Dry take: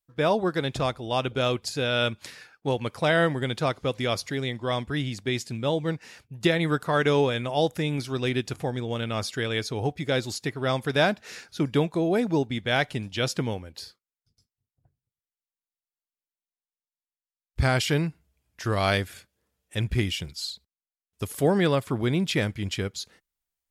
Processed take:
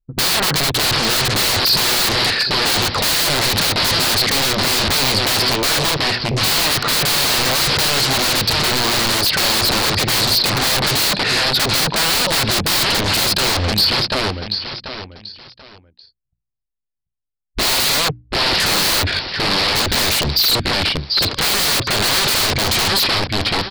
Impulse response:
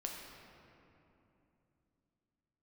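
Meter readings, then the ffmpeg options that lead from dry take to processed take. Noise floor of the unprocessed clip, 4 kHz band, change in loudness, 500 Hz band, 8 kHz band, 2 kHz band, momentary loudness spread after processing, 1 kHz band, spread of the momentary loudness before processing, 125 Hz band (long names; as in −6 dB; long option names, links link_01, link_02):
below −85 dBFS, +19.5 dB, +12.0 dB, +2.5 dB, +22.0 dB, +12.0 dB, 4 LU, +10.5 dB, 11 LU, +4.5 dB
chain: -filter_complex "[0:a]aresample=11025,aeval=exprs='(mod(20*val(0)+1,2)-1)/20':channel_layout=same,aresample=44100,anlmdn=0.01,aecho=1:1:737|1474|2211:0.224|0.0537|0.0129,asplit=2[link_01][link_02];[link_02]aeval=exprs='0.1*sin(PI/2*8.91*val(0)/0.1)':channel_layout=same,volume=-5.5dB[link_03];[link_01][link_03]amix=inputs=2:normalize=0,equalizer=frequency=4300:width=3.4:gain=7,bandreject=frequency=60:width_type=h:width=6,bandreject=frequency=120:width_type=h:width=6,bandreject=frequency=180:width_type=h:width=6,bandreject=frequency=240:width_type=h:width=6,bandreject=frequency=300:width_type=h:width=6,volume=9dB"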